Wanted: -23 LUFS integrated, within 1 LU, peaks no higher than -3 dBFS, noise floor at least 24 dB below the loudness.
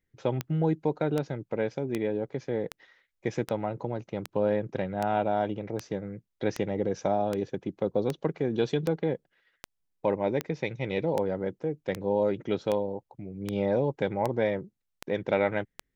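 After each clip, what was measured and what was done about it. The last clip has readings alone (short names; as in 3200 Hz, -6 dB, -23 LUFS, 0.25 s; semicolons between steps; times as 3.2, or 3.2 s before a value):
clicks 21; loudness -30.0 LUFS; peak -12.5 dBFS; loudness target -23.0 LUFS
-> de-click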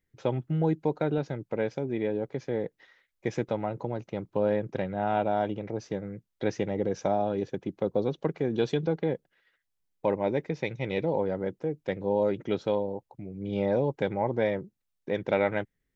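clicks 0; loudness -30.0 LUFS; peak -12.5 dBFS; loudness target -23.0 LUFS
-> gain +7 dB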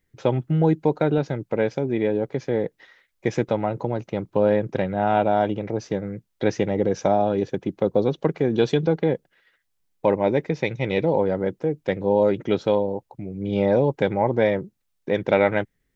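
loudness -23.0 LUFS; peak -5.5 dBFS; noise floor -73 dBFS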